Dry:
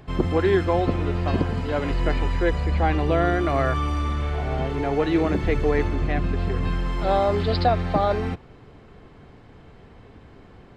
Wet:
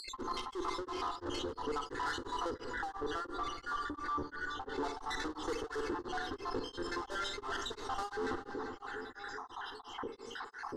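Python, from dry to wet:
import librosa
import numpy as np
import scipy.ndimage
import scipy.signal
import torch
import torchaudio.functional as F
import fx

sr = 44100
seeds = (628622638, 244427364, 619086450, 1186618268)

y = fx.spec_dropout(x, sr, seeds[0], share_pct=75)
y = scipy.signal.sosfilt(scipy.signal.butter(2, 240.0, 'highpass', fs=sr, output='sos'), y)
y = fx.tube_stage(y, sr, drive_db=40.0, bias=0.6)
y = fx.air_absorb(y, sr, metres=61.0)
y = fx.fixed_phaser(y, sr, hz=640.0, stages=6)
y = fx.echo_filtered(y, sr, ms=391, feedback_pct=49, hz=3700.0, wet_db=-20)
y = fx.rev_schroeder(y, sr, rt60_s=0.76, comb_ms=38, drr_db=10.0)
y = y * (1.0 - 1.0 / 2.0 + 1.0 / 2.0 * np.cos(2.0 * np.pi * 2.9 * (np.arange(len(y)) / sr)))
y = fx.high_shelf(y, sr, hz=2700.0, db=-10.0, at=(2.54, 4.78))
y = fx.env_flatten(y, sr, amount_pct=70)
y = F.gain(torch.from_numpy(y), 8.0).numpy()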